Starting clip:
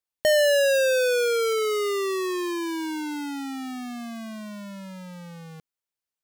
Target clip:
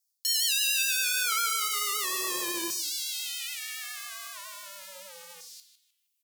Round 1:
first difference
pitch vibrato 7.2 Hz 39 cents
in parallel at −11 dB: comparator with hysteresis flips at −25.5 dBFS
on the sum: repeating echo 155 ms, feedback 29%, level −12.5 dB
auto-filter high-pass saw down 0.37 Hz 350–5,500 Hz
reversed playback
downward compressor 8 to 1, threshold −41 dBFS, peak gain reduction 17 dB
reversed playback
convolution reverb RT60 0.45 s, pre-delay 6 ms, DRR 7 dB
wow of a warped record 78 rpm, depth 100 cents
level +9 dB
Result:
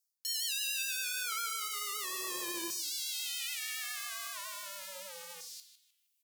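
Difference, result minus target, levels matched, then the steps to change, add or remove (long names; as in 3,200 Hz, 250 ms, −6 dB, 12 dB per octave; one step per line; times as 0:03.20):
downward compressor: peak gain reduction +8.5 dB
change: downward compressor 8 to 1, threshold −31 dBFS, peak gain reduction 8.5 dB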